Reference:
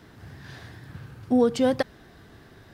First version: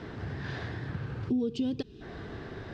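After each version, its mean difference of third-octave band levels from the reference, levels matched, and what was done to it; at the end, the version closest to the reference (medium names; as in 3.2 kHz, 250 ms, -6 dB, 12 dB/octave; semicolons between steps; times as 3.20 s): 10.5 dB: time-frequency box 1.30–2.02 s, 470–2400 Hz -17 dB; peaking EQ 430 Hz +4 dB 0.69 oct; compression 3:1, threshold -41 dBFS, peak gain reduction 17 dB; distance through air 150 m; trim +8.5 dB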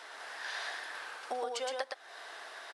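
16.5 dB: high-pass 630 Hz 24 dB/octave; compression 10:1, threshold -43 dBFS, peak gain reduction 19.5 dB; on a send: delay 116 ms -3 dB; on the sum: trim +8 dB; AAC 96 kbps 24 kHz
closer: first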